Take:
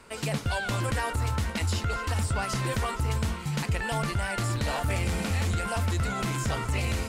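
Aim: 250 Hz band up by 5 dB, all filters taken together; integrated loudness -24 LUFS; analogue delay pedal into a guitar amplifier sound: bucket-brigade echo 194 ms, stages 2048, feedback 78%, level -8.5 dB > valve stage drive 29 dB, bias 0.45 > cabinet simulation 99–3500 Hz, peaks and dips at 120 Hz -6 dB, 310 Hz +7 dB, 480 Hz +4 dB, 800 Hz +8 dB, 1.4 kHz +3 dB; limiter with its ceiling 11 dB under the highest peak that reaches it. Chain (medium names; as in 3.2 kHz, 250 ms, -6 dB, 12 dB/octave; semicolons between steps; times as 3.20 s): peaking EQ 250 Hz +4.5 dB; peak limiter -28 dBFS; bucket-brigade echo 194 ms, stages 2048, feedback 78%, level -8.5 dB; valve stage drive 29 dB, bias 0.45; cabinet simulation 99–3500 Hz, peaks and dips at 120 Hz -6 dB, 310 Hz +7 dB, 480 Hz +4 dB, 800 Hz +8 dB, 1.4 kHz +3 dB; trim +12.5 dB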